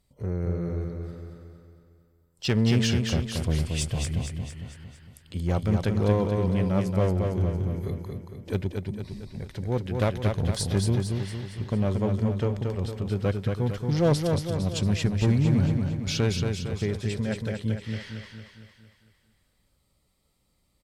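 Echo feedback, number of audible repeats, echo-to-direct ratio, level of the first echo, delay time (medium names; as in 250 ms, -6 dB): 52%, 6, -3.0 dB, -4.5 dB, 228 ms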